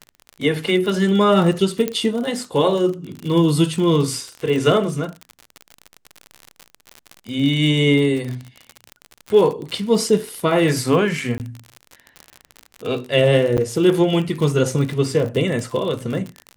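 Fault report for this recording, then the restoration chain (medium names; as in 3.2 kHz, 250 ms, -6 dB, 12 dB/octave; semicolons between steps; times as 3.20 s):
crackle 59 per s -25 dBFS
1.88 s: pop -8 dBFS
11.38–11.40 s: dropout 18 ms
13.57–13.58 s: dropout 8.9 ms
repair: de-click; interpolate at 11.38 s, 18 ms; interpolate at 13.57 s, 8.9 ms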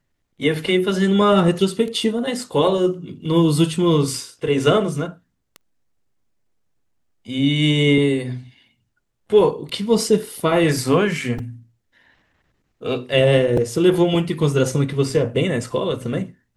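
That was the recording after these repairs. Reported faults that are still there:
1.88 s: pop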